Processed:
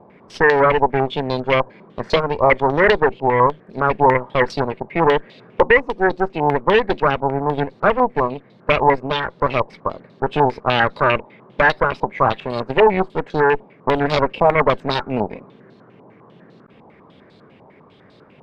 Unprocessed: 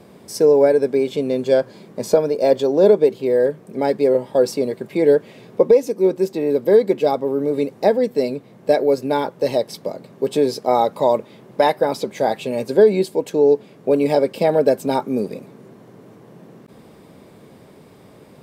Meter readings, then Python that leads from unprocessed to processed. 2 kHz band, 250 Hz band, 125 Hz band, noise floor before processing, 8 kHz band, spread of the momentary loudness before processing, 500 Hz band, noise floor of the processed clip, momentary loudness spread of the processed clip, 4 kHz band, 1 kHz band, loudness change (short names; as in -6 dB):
+14.0 dB, -2.5 dB, +6.5 dB, -47 dBFS, n/a, 9 LU, -3.0 dB, -49 dBFS, 9 LU, +5.5 dB, +7.5 dB, 0.0 dB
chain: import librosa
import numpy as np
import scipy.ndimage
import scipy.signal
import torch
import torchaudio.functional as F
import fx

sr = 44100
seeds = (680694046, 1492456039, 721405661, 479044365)

y = fx.cheby_harmonics(x, sr, harmonics=(6,), levels_db=(-11,), full_scale_db=-3.5)
y = fx.filter_held_lowpass(y, sr, hz=10.0, low_hz=910.0, high_hz=4100.0)
y = y * librosa.db_to_amplitude(-4.0)